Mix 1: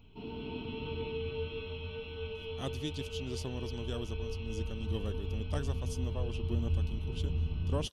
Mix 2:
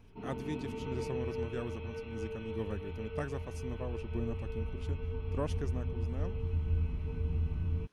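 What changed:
speech: entry −2.35 s
master: add high shelf with overshoot 2,500 Hz −6.5 dB, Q 3

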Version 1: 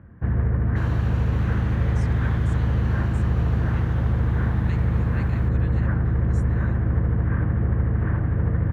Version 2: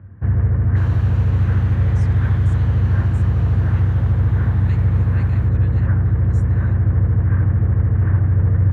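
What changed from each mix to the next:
master: add parametric band 98 Hz +13.5 dB 0.36 octaves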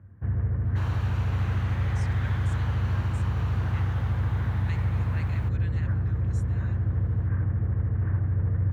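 first sound −10.0 dB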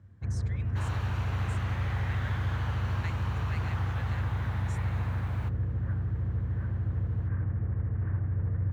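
speech: entry −1.65 s
first sound −4.5 dB

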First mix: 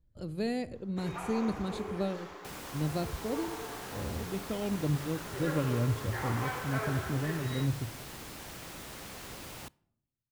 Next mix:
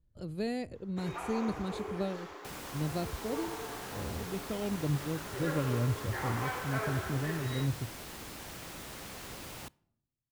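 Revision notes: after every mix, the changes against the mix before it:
speech: send −11.0 dB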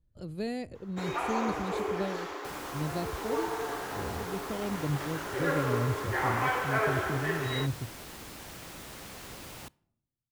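first sound +8.0 dB

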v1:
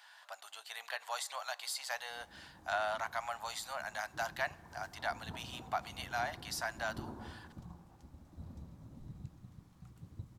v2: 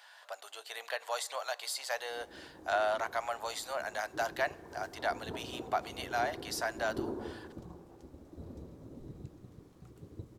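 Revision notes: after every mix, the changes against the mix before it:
master: remove drawn EQ curve 190 Hz 0 dB, 410 Hz −17 dB, 820 Hz −2 dB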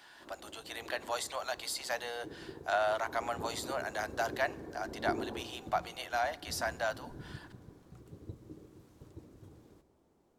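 background: entry −1.90 s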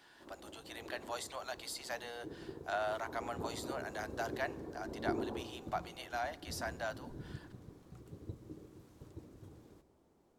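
speech −6.0 dB

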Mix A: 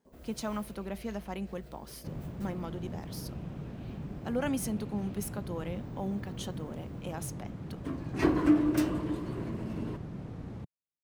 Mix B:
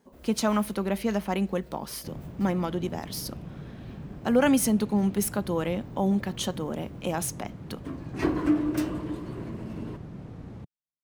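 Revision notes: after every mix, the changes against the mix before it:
speech +10.5 dB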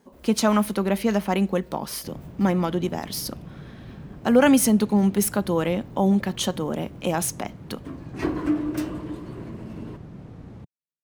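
speech +5.0 dB

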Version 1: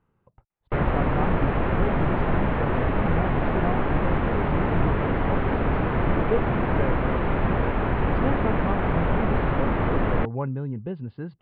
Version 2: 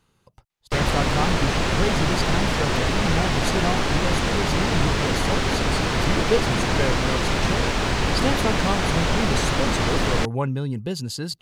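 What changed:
speech +3.5 dB
master: remove Gaussian smoothing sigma 4.4 samples

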